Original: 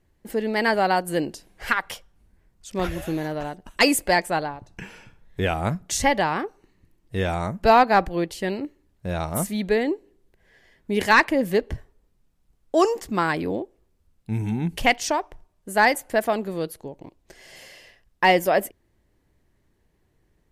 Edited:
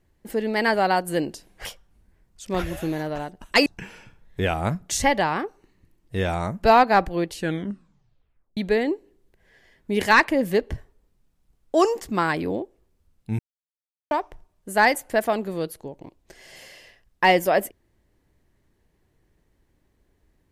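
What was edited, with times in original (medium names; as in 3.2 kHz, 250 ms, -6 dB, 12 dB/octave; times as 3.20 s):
1.65–1.90 s: delete
3.91–4.66 s: delete
8.32 s: tape stop 1.25 s
14.39–15.11 s: mute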